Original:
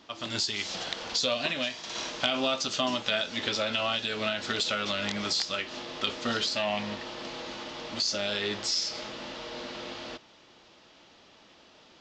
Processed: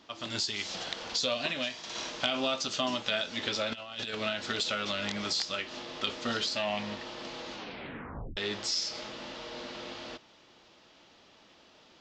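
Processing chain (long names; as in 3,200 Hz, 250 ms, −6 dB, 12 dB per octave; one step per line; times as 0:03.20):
0:03.72–0:04.15: compressor whose output falls as the input rises −35 dBFS, ratio −0.5
0:07.54: tape stop 0.83 s
level −2.5 dB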